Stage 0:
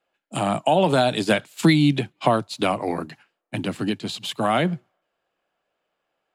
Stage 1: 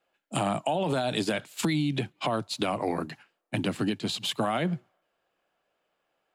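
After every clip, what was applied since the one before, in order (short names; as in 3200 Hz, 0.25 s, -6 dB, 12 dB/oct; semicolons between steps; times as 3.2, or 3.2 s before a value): limiter -13.5 dBFS, peak gain reduction 9.5 dB; compressor 4:1, threshold -24 dBFS, peak gain reduction 6.5 dB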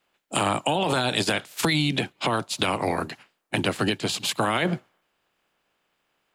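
spectral limiter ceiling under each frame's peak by 13 dB; gain +4 dB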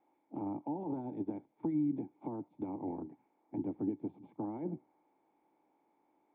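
switching spikes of -24.5 dBFS; vocal tract filter u; gain -4 dB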